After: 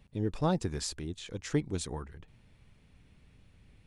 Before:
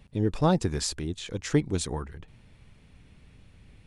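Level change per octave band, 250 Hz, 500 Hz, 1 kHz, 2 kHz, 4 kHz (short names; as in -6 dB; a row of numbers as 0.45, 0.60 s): -6.0, -6.0, -6.0, -6.0, -6.0 dB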